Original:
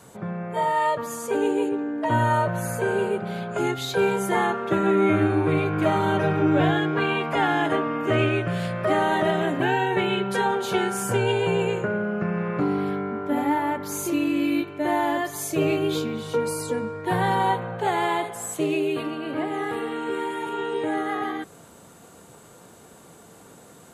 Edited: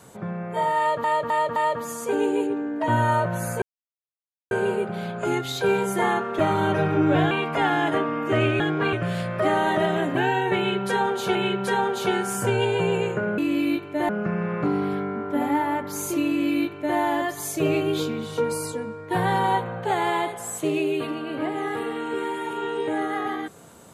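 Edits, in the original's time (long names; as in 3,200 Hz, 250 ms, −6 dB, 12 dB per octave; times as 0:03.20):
0:00.78–0:01.04: repeat, 4 plays
0:02.84: splice in silence 0.89 s
0:04.72–0:05.84: remove
0:06.76–0:07.09: move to 0:08.38
0:10.02–0:10.80: repeat, 2 plays
0:14.23–0:14.94: duplicate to 0:12.05
0:16.68–0:17.07: clip gain −4 dB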